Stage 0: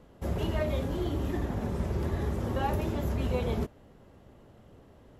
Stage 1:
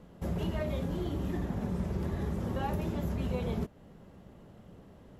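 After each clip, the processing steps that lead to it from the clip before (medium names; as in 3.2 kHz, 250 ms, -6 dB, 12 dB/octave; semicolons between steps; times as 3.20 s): peaking EQ 180 Hz +9 dB 0.41 oct; compression 1.5:1, threshold -37 dBFS, peak gain reduction 5.5 dB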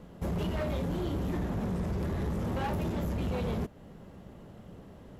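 overload inside the chain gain 32.5 dB; trim +4 dB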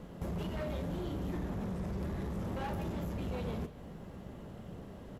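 compression 5:1, threshold -38 dBFS, peak gain reduction 7.5 dB; doubling 41 ms -13.5 dB; reverberation, pre-delay 142 ms, DRR 13.5 dB; trim +1.5 dB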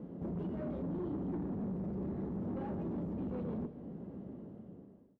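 fade out at the end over 1.05 s; band-pass filter 270 Hz, Q 1.4; saturation -39 dBFS, distortion -15 dB; trim +6.5 dB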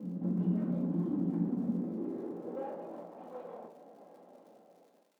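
crackle 150 per s -55 dBFS; high-pass sweep 190 Hz -> 680 Hz, 1.39–3.06 s; simulated room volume 520 m³, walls furnished, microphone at 2.1 m; trim -4.5 dB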